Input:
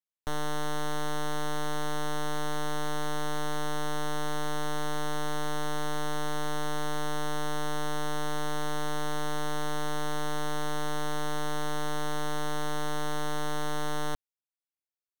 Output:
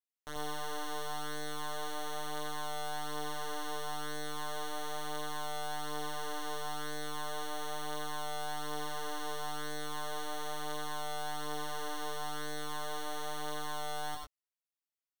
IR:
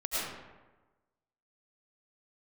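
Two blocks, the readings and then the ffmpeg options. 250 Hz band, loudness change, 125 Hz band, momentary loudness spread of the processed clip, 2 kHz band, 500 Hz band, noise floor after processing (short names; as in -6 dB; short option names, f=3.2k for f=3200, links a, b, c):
-10.0 dB, -5.5 dB, -13.0 dB, 1 LU, -5.5 dB, -7.0 dB, under -85 dBFS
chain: -filter_complex "[0:a]lowshelf=f=270:g=-11,flanger=delay=18.5:depth=7.7:speed=0.36[a];[1:a]atrim=start_sample=2205,atrim=end_sample=4410[b];[a][b]afir=irnorm=-1:irlink=0,volume=-1dB"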